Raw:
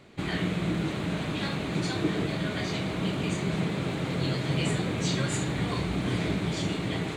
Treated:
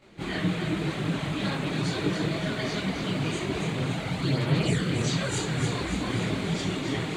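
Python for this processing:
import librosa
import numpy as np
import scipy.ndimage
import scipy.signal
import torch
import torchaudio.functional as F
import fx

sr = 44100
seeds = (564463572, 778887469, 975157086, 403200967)

y = fx.echo_thinned(x, sr, ms=283, feedback_pct=58, hz=420.0, wet_db=-5.5)
y = fx.chorus_voices(y, sr, voices=4, hz=0.82, base_ms=23, depth_ms=4.3, mix_pct=70)
y = F.gain(torch.from_numpy(y), 2.5).numpy()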